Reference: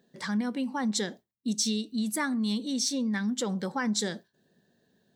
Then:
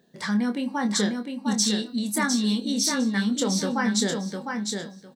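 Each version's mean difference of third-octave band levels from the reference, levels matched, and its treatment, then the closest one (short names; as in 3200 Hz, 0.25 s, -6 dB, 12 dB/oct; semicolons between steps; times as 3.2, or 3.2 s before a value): 4.5 dB: doubler 25 ms -7 dB; de-hum 275 Hz, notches 18; on a send: feedback echo 0.705 s, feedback 19%, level -5 dB; on the sum: gain +4 dB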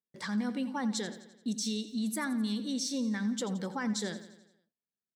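3.0 dB: gate -59 dBFS, range -33 dB; limiter -22 dBFS, peak gain reduction 7.5 dB; on a send: feedback echo 86 ms, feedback 56%, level -14 dB; on the sum: gain -3 dB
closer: second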